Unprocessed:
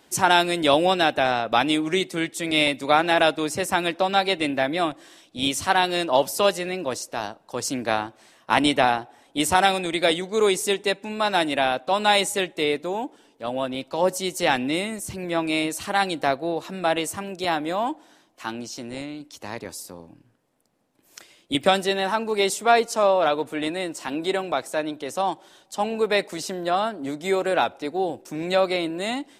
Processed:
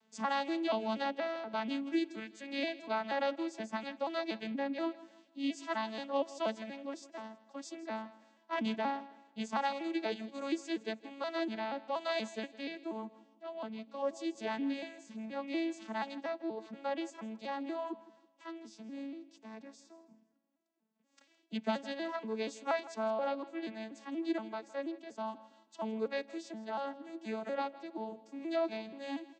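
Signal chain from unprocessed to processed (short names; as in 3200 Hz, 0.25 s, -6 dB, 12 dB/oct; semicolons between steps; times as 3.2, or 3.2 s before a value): arpeggiated vocoder major triad, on A3, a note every 0.239 s; bell 380 Hz -6.5 dB 2.5 oct; on a send: feedback echo 0.162 s, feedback 34%, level -18 dB; on the sum: gain -8.5 dB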